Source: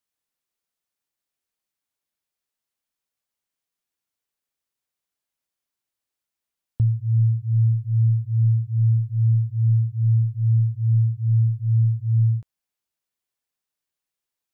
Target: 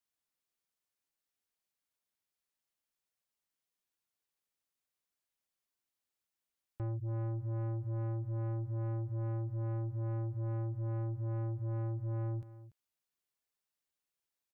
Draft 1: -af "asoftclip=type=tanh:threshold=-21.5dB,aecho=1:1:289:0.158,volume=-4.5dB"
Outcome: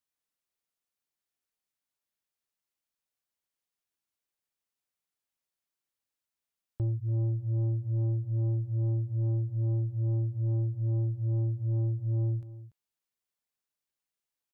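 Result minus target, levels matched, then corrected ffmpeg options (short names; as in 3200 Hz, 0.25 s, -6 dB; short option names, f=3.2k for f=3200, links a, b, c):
soft clip: distortion -5 dB
-af "asoftclip=type=tanh:threshold=-30.5dB,aecho=1:1:289:0.158,volume=-4.5dB"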